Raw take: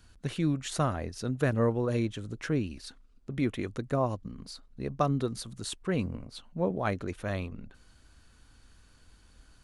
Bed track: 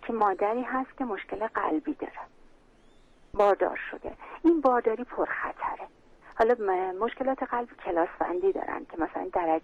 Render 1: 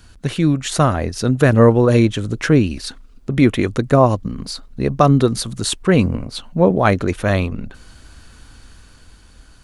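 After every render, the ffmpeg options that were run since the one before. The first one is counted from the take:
-af "dynaudnorm=f=190:g=11:m=4dB,alimiter=level_in=12dB:limit=-1dB:release=50:level=0:latency=1"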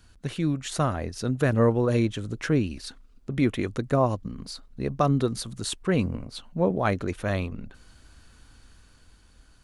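-af "volume=-10dB"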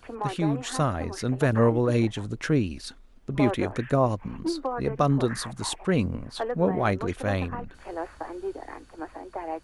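-filter_complex "[1:a]volume=-7.5dB[a];[0:a][a]amix=inputs=2:normalize=0"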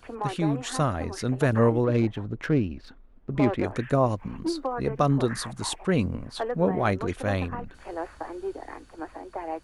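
-filter_complex "[0:a]asettb=1/sr,asplit=3[a][b][c];[a]atrim=end=1.844[d];[b]atrim=start=1.84:end=3.64,asetpts=PTS-STARTPTS,afade=t=in:d=0.004:c=qsin,afade=t=out:st=1.796:d=0.004:c=qsin,adynamicsmooth=sensitivity=2:basefreq=1.9k[e];[c]atrim=start=3.636[f];[d][e]acrossfade=d=0.004:c1=hsin:c2=qsin[g];[g][f]acrossfade=d=0.004:c1=qsin:c2=hsin"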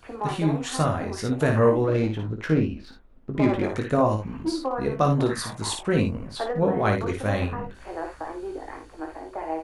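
-filter_complex "[0:a]asplit=2[a][b];[b]adelay=19,volume=-6.5dB[c];[a][c]amix=inputs=2:normalize=0,aecho=1:1:56|77:0.501|0.158"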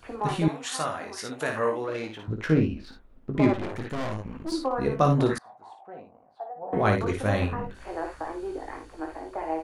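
-filter_complex "[0:a]asettb=1/sr,asplit=3[a][b][c];[a]atrim=end=0.484[d];[b]atrim=start=0.48:end=2.28,asetpts=PTS-STARTPTS,afade=t=in:d=0.004:c=qsin,afade=t=out:st=1.796:d=0.004:c=qsin,highpass=f=1k:p=1[e];[c]atrim=start=2.276[f];[d][e]acrossfade=d=0.004:c1=hsin:c2=qsin[g];[g][f]acrossfade=d=0.004:c1=qsin:c2=hsin,asettb=1/sr,asplit=3[h][i][j];[h]atrim=end=3.534[k];[i]atrim=start=3.53:end=4.52,asetpts=PTS-STARTPTS,afade=t=in:d=0.004:c=qsin,afade=t=out:st=0.986:d=0.004:c=qsin,aeval=exprs='(tanh(28.2*val(0)+0.8)-tanh(0.8))/28.2':c=same[l];[j]atrim=start=4.516[m];[k][l]acrossfade=d=0.004:c1=hsin:c2=qsin[n];[n][m]acrossfade=d=0.004:c1=qsin:c2=hsin,asettb=1/sr,asplit=3[o][p][q];[o]atrim=end=5.384[r];[p]atrim=start=5.38:end=6.73,asetpts=PTS-STARTPTS,afade=t=in:d=0.004:c=qsin,afade=t=out:st=1.346:d=0.004:c=qsin,bandpass=f=750:t=q:w=9.3[s];[q]atrim=start=6.726[t];[r][s]acrossfade=d=0.004:c1=hsin:c2=qsin[u];[u][t]acrossfade=d=0.004:c1=qsin:c2=hsin"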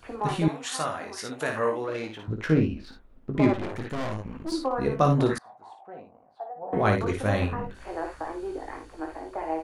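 -af anull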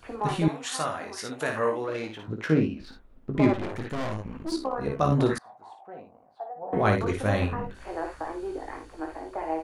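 -filter_complex "[0:a]asettb=1/sr,asplit=3[a][b][c];[a]atrim=end=2.274[d];[b]atrim=start=2.27:end=2.8,asetpts=PTS-STARTPTS,afade=t=in:d=0.004:c=qsin,afade=t=out:st=0.526:d=0.004:c=qsin,highpass=130[e];[c]atrim=start=2.796[f];[d][e]acrossfade=d=0.004:c1=hsin:c2=qsin[g];[g][f]acrossfade=d=0.004:c1=qsin:c2=hsin,asettb=1/sr,asplit=3[h][i][j];[h]atrim=end=4.564[k];[i]atrim=start=4.56:end=5.12,asetpts=PTS-STARTPTS,afade=t=in:d=0.004:c=qsin,afade=t=out:st=0.556:d=0.004:c=qsin,tremolo=f=64:d=0.621[l];[j]atrim=start=5.116[m];[k][l]acrossfade=d=0.004:c1=hsin:c2=qsin[n];[n][m]acrossfade=d=0.004:c1=qsin:c2=hsin"

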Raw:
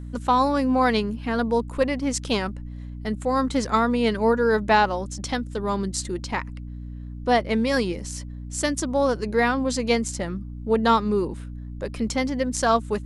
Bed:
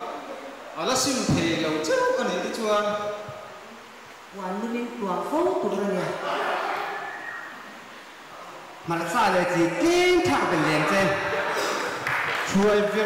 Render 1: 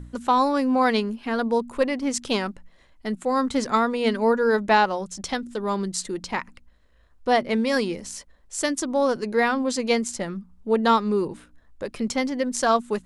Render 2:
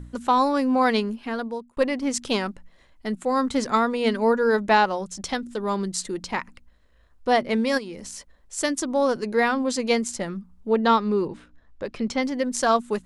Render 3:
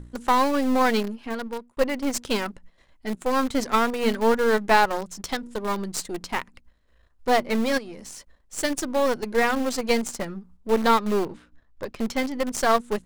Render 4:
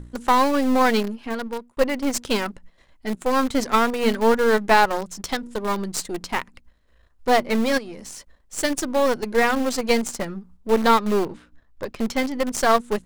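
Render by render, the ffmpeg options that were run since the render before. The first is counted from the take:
-af "bandreject=f=60:t=h:w=4,bandreject=f=120:t=h:w=4,bandreject=f=180:t=h:w=4,bandreject=f=240:t=h:w=4,bandreject=f=300:t=h:w=4"
-filter_complex "[0:a]asplit=3[a][b][c];[a]afade=t=out:st=7.77:d=0.02[d];[b]acompressor=threshold=-33dB:ratio=4:attack=3.2:release=140:knee=1:detection=peak,afade=t=in:st=7.77:d=0.02,afade=t=out:st=8.56:d=0.02[e];[c]afade=t=in:st=8.56:d=0.02[f];[d][e][f]amix=inputs=3:normalize=0,asettb=1/sr,asplit=3[g][h][i];[g]atrim=end=10.704[j];[h]atrim=start=10.7:end=12.23,asetpts=PTS-STARTPTS,afade=t=in:d=0.004:c=qsin,afade=t=out:st=1.526:d=0.004:c=qsin,lowpass=5.5k[k];[i]atrim=start=12.226[l];[j][k]acrossfade=d=0.004:c1=hsin:c2=qsin[m];[m][l]acrossfade=d=0.004:c1=qsin:c2=hsin,asplit=2[n][o];[n]atrim=end=1.77,asetpts=PTS-STARTPTS,afade=t=out:st=1.14:d=0.63[p];[o]atrim=start=1.77,asetpts=PTS-STARTPTS,afade=t=in:d=0.004:c=hsin[q];[p][q]concat=n=2:v=0:a=1"
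-filter_complex "[0:a]aeval=exprs='if(lt(val(0),0),0.447*val(0),val(0))':c=same,asplit=2[a][b];[b]acrusher=bits=3:mix=0:aa=0.000001,volume=-10.5dB[c];[a][c]amix=inputs=2:normalize=0"
-af "volume=2.5dB,alimiter=limit=-3dB:level=0:latency=1"

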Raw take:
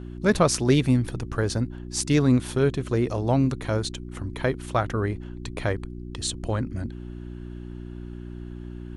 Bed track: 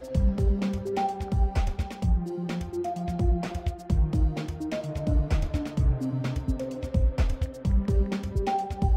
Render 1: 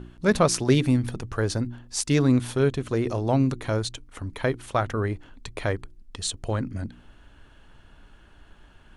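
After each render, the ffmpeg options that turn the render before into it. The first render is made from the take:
-af "bandreject=f=60:t=h:w=4,bandreject=f=120:t=h:w=4,bandreject=f=180:t=h:w=4,bandreject=f=240:t=h:w=4,bandreject=f=300:t=h:w=4,bandreject=f=360:t=h:w=4"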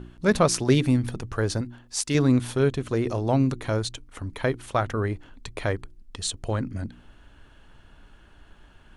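-filter_complex "[0:a]asettb=1/sr,asplit=3[a][b][c];[a]atrim=end=1.614[d];[b]atrim=start=1.61:end=2.15,asetpts=PTS-STARTPTS,afade=t=in:d=0.004:c=qsin,afade=t=out:st=0.536:d=0.004:c=qsin,lowshelf=f=280:g=-7.5[e];[c]atrim=start=2.146[f];[d][e]acrossfade=d=0.004:c1=hsin:c2=qsin[g];[g][f]acrossfade=d=0.004:c1=qsin:c2=hsin"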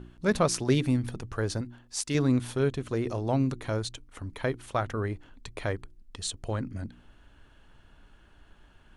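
-af "volume=-4.5dB"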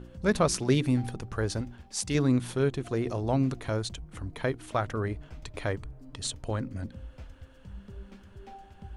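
-filter_complex "[1:a]volume=-20.5dB[a];[0:a][a]amix=inputs=2:normalize=0"

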